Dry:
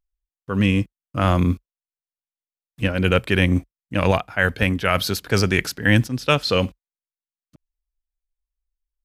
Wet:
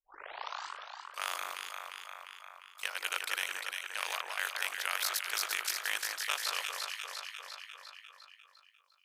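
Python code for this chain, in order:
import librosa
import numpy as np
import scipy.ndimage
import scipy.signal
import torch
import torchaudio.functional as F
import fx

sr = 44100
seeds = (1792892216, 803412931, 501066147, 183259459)

y = fx.tape_start_head(x, sr, length_s=1.24)
y = scipy.signal.sosfilt(scipy.signal.cheby2(4, 70, 240.0, 'highpass', fs=sr, output='sos'), y)
y = y * np.sin(2.0 * np.pi * 26.0 * np.arange(len(y)) / sr)
y = fx.echo_alternate(y, sr, ms=175, hz=1700.0, feedback_pct=66, wet_db=-4.5)
y = fx.spectral_comp(y, sr, ratio=2.0)
y = y * 10.0 ** (-8.5 / 20.0)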